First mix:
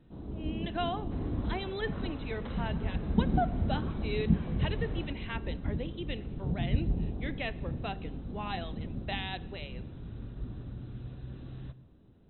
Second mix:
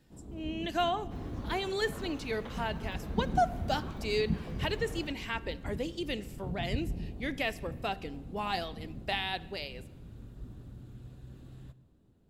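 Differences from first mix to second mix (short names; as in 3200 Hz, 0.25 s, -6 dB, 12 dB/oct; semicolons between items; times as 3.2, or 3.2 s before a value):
speech +4.0 dB; first sound -6.0 dB; master: remove brick-wall FIR low-pass 4100 Hz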